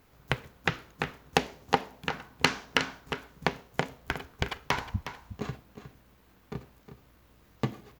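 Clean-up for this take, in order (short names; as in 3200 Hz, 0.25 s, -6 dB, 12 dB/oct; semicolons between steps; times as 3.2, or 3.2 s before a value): clip repair -6 dBFS; inverse comb 0.362 s -11.5 dB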